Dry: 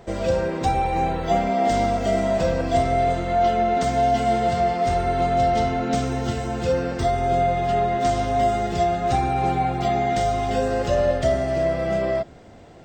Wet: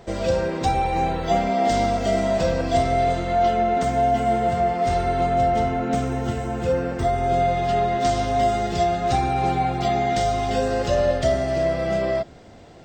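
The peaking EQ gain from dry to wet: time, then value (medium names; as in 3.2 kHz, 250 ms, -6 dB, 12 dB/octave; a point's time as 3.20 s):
peaking EQ 4.6 kHz 1.2 oct
3.22 s +3.5 dB
4.08 s -8 dB
4.72 s -8 dB
4.96 s +3 dB
5.50 s -7.5 dB
7.01 s -7.5 dB
7.47 s +4 dB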